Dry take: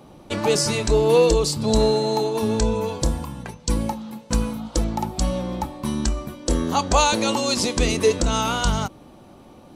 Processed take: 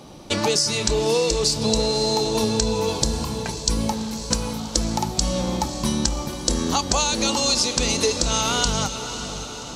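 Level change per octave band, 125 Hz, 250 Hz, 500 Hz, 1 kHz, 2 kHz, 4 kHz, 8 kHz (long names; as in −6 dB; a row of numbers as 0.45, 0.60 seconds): −1.5, −1.0, −3.0, −1.5, 0.0, +5.0, +5.5 decibels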